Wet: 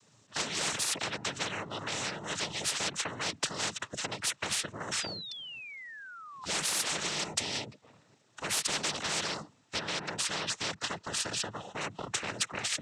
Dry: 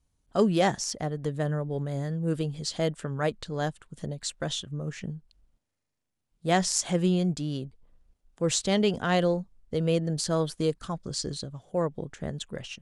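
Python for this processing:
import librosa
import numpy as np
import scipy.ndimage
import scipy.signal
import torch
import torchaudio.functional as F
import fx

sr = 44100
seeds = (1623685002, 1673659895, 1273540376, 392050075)

y = fx.low_shelf(x, sr, hz=390.0, db=-7.0)
y = np.clip(y, -10.0 ** (-23.0 / 20.0), 10.0 ** (-23.0 / 20.0))
y = fx.noise_vocoder(y, sr, seeds[0], bands=12)
y = fx.spec_paint(y, sr, seeds[1], shape='fall', start_s=4.92, length_s=1.53, low_hz=1000.0, high_hz=5500.0, level_db=-24.0)
y = fx.high_shelf(y, sr, hz=4200.0, db=-9.5, at=(9.79, 11.81))
y = fx.spectral_comp(y, sr, ratio=10.0)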